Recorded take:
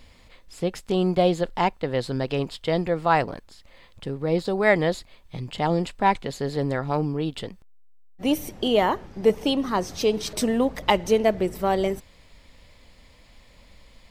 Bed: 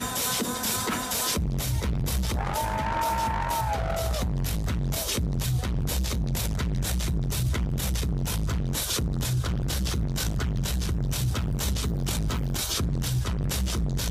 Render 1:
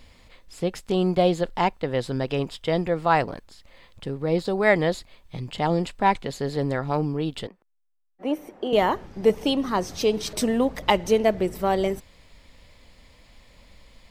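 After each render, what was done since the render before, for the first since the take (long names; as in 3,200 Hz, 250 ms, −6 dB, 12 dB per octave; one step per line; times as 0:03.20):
0:01.84–0:02.94: notch filter 4,300 Hz
0:07.47–0:08.73: three-way crossover with the lows and the highs turned down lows −22 dB, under 260 Hz, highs −17 dB, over 2,000 Hz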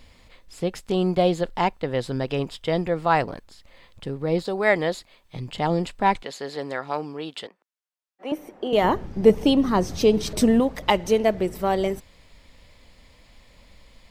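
0:04.43–0:05.36: low-shelf EQ 170 Hz −10 dB
0:06.23–0:08.32: meter weighting curve A
0:08.84–0:10.60: low-shelf EQ 370 Hz +9 dB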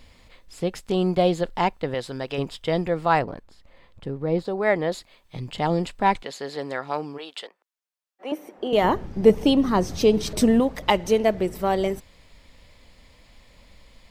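0:01.94–0:02.38: low-shelf EQ 360 Hz −9 dB
0:03.19–0:04.92: high-shelf EQ 2,300 Hz −10 dB
0:07.17–0:08.56: high-pass filter 560 Hz → 210 Hz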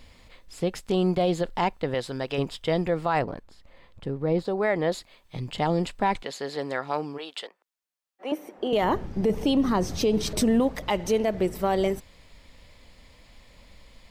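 brickwall limiter −14.5 dBFS, peak gain reduction 11.5 dB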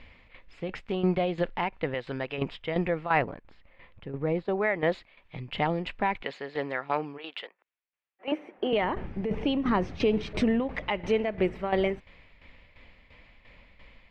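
shaped tremolo saw down 2.9 Hz, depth 70%
low-pass with resonance 2,400 Hz, resonance Q 2.2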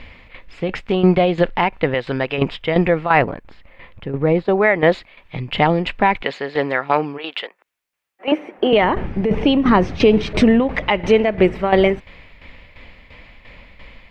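level +12 dB
brickwall limiter −2 dBFS, peak gain reduction 2.5 dB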